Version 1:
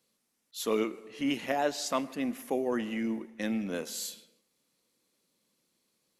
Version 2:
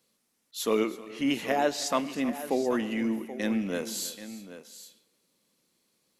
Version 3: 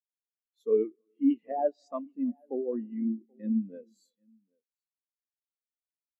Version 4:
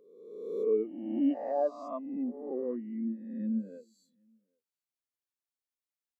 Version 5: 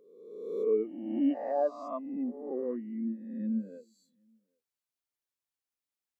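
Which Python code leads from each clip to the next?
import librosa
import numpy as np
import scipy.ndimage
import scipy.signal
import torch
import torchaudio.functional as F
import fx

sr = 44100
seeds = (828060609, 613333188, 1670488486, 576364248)

y1 = fx.echo_multitap(x, sr, ms=(318, 781), db=(-17.5, -13.5))
y1 = y1 * 10.0 ** (3.0 / 20.0)
y2 = fx.spectral_expand(y1, sr, expansion=2.5)
y2 = y2 * 10.0 ** (-2.0 / 20.0)
y3 = fx.spec_swells(y2, sr, rise_s=1.18)
y3 = y3 * 10.0 ** (-4.5 / 20.0)
y4 = fx.dynamic_eq(y3, sr, hz=1700.0, q=1.0, threshold_db=-50.0, ratio=4.0, max_db=4)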